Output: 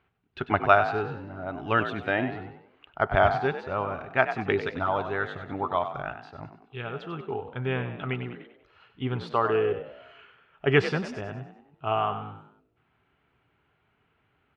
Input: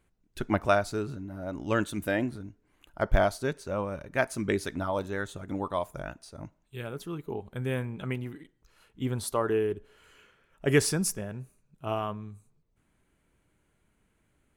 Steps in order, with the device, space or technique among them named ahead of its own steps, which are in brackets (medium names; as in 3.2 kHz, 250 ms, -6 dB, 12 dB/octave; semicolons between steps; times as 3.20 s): peaking EQ 400 Hz +4 dB 0.21 oct; frequency-shifting delay pedal into a guitar cabinet (frequency-shifting echo 96 ms, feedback 43%, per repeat +52 Hz, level -10.5 dB; cabinet simulation 92–3600 Hz, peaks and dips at 200 Hz -8 dB, 320 Hz -6 dB, 540 Hz -6 dB, 770 Hz +6 dB, 1.3 kHz +6 dB, 2.8 kHz +4 dB); trim +3 dB